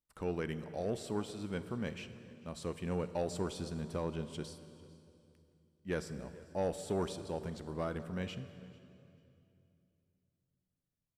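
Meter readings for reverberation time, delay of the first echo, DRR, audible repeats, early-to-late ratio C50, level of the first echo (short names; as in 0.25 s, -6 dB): 2.6 s, 0.443 s, 11.0 dB, 1, 11.5 dB, -23.0 dB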